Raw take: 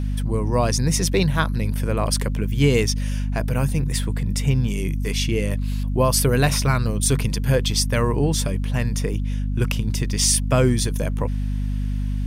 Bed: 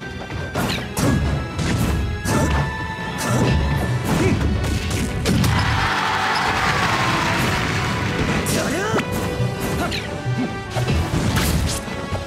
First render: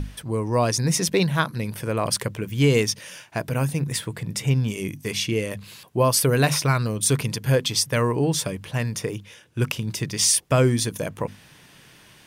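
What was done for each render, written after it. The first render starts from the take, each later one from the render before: hum notches 50/100/150/200/250 Hz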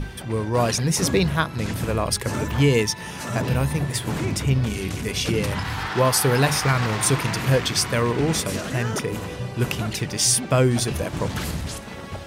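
add bed -9 dB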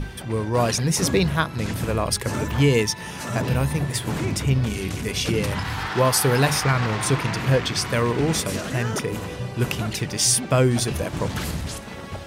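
6.63–7.85 s: treble shelf 7.3 kHz -9.5 dB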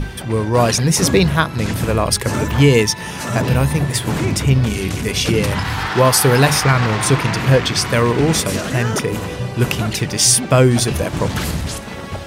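trim +6.5 dB; peak limiter -1 dBFS, peak gain reduction 1 dB

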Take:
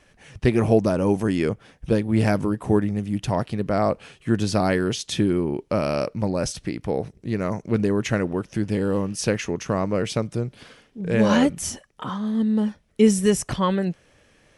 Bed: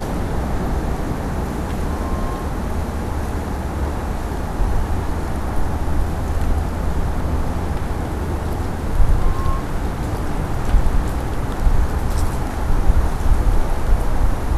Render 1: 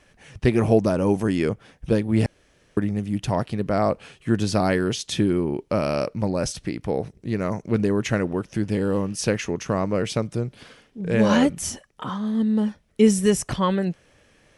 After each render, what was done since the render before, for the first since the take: 2.26–2.77 s: room tone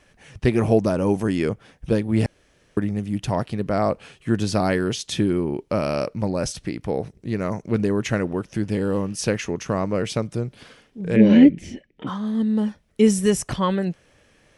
11.16–12.07 s: FFT filter 110 Hz 0 dB, 320 Hz +10 dB, 1.2 kHz -19 dB, 2.1 kHz +4 dB, 11 kHz -28 dB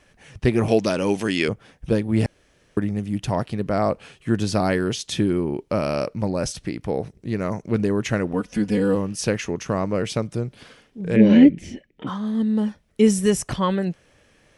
0.68–1.48 s: frequency weighting D; 8.33–8.95 s: comb 4.1 ms, depth 94%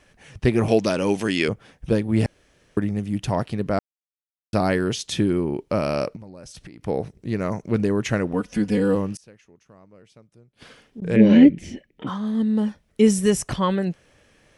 3.79–4.53 s: mute; 6.16–6.87 s: compression 16:1, threshold -37 dBFS; 9.15–11.02 s: inverted gate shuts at -27 dBFS, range -27 dB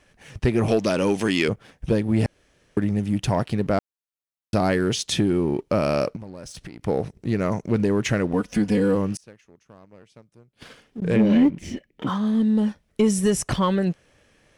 compression 2:1, threshold -22 dBFS, peak gain reduction 8 dB; waveshaping leveller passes 1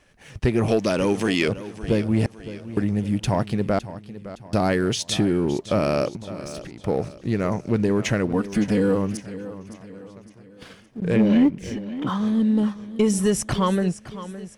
modulated delay 562 ms, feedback 44%, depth 66 cents, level -14.5 dB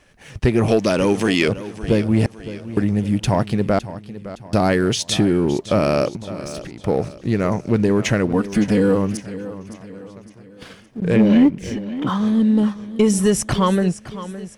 trim +4 dB

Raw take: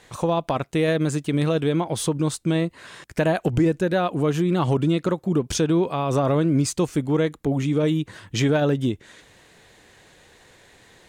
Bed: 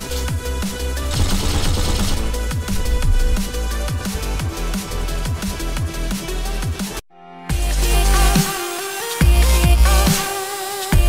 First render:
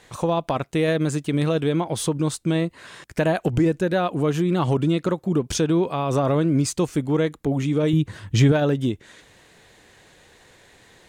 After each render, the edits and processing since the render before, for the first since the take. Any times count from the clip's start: 7.93–8.52 s: peaking EQ 82 Hz +11 dB 2.2 oct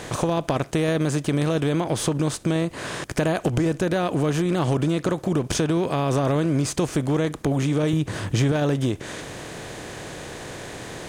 spectral levelling over time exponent 0.6; compression 2:1, threshold -22 dBFS, peak gain reduction 7 dB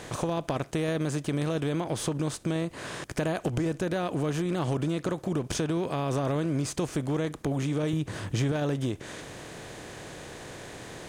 trim -6.5 dB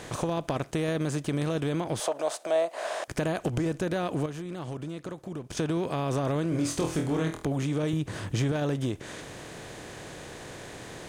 2.00–3.08 s: resonant high-pass 650 Hz, resonance Q 6.3; 4.26–5.57 s: gain -8 dB; 6.49–7.45 s: flutter echo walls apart 4.2 m, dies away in 0.35 s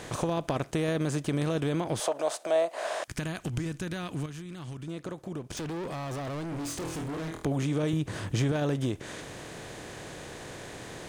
3.03–4.88 s: peaking EQ 560 Hz -12.5 dB 1.8 oct; 5.56–7.43 s: overload inside the chain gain 33 dB

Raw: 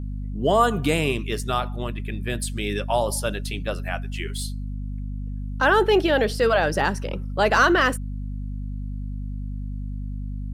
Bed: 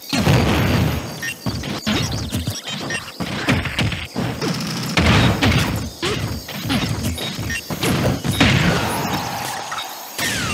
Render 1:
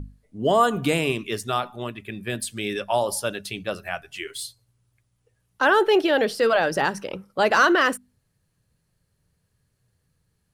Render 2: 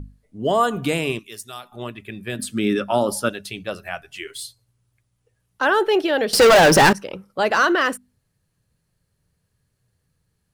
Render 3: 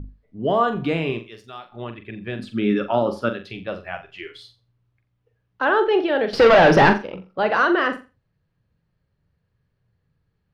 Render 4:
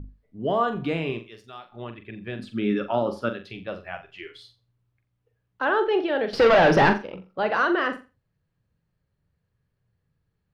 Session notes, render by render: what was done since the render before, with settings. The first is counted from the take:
hum notches 50/100/150/200/250 Hz
1.19–1.72 s: pre-emphasis filter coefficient 0.8; 2.39–3.29 s: small resonant body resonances 240/1300 Hz, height 14 dB, ringing for 20 ms; 6.33–6.93 s: waveshaping leveller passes 5
distance through air 270 m; flutter echo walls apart 7.4 m, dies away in 0.29 s
trim -4 dB

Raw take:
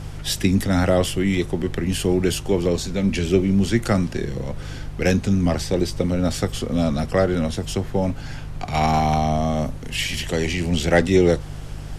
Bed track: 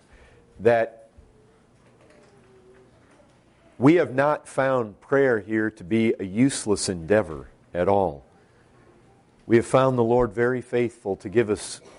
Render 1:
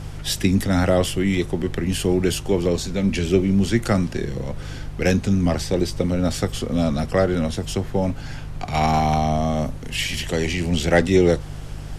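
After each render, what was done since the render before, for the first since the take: no audible change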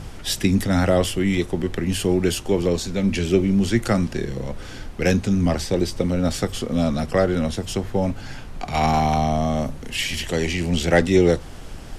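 de-hum 50 Hz, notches 3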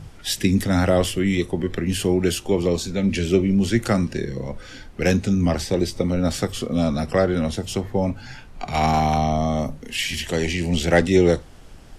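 noise print and reduce 8 dB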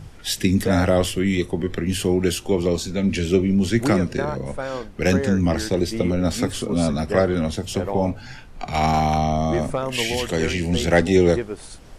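add bed track -7 dB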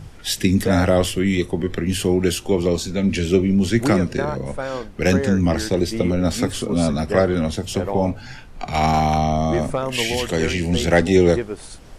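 trim +1.5 dB; peak limiter -3 dBFS, peak gain reduction 1 dB

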